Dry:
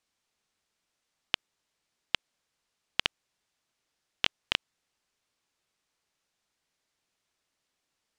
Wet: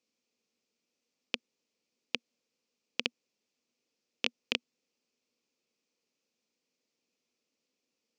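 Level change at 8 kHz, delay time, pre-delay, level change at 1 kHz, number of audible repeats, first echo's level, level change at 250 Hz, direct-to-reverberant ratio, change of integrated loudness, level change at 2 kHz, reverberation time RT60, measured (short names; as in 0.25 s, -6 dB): -2.5 dB, none, none, -8.5 dB, none, none, +4.0 dB, none, -3.5 dB, -3.0 dB, none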